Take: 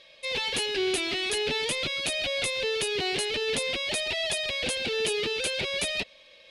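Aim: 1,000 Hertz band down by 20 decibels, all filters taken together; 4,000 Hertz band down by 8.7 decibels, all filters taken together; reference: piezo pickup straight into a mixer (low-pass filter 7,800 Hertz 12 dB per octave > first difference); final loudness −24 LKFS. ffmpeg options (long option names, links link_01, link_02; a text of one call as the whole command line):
ffmpeg -i in.wav -af "lowpass=7800,aderivative,equalizer=frequency=1000:width_type=o:gain=-3,equalizer=frequency=4000:width_type=o:gain=-3,volume=13dB" out.wav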